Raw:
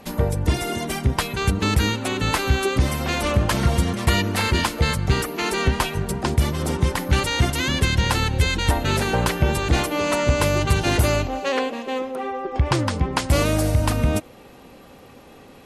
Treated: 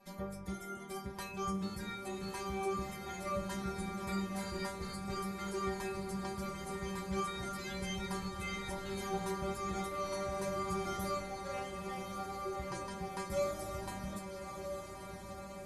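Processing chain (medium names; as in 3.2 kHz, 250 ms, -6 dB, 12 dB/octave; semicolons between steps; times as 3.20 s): band-stop 2.8 kHz, Q 7; inharmonic resonator 190 Hz, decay 0.42 s, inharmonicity 0.002; dynamic bell 3.2 kHz, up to -6 dB, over -51 dBFS, Q 0.74; echo that smears into a reverb 1217 ms, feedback 70%, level -7 dB; trim -3 dB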